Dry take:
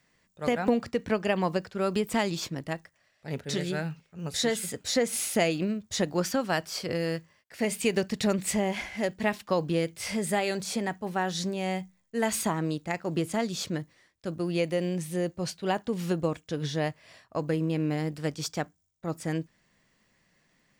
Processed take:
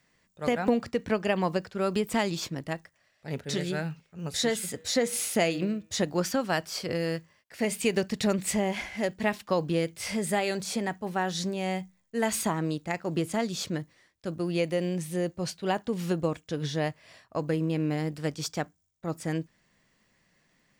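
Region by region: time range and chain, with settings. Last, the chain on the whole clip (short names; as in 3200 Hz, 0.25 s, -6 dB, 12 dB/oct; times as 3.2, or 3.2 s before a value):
4.56–6.03 HPF 45 Hz + de-hum 160.4 Hz, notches 25
whole clip: dry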